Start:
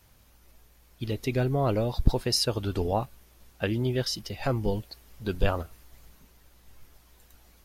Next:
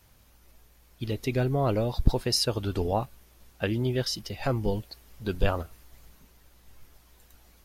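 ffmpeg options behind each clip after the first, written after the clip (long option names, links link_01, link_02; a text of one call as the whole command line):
ffmpeg -i in.wav -af anull out.wav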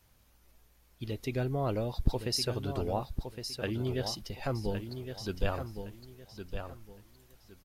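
ffmpeg -i in.wav -af "aecho=1:1:1113|2226|3339:0.398|0.104|0.0269,volume=-6dB" out.wav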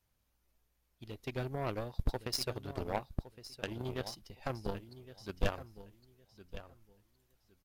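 ffmpeg -i in.wav -af "aeval=exprs='0.299*(cos(1*acos(clip(val(0)/0.299,-1,1)))-cos(1*PI/2))+0.00944*(cos(4*acos(clip(val(0)/0.299,-1,1)))-cos(4*PI/2))+0.0106*(cos(6*acos(clip(val(0)/0.299,-1,1)))-cos(6*PI/2))+0.0376*(cos(7*acos(clip(val(0)/0.299,-1,1)))-cos(7*PI/2))':channel_layout=same,volume=25dB,asoftclip=hard,volume=-25dB,volume=5dB" out.wav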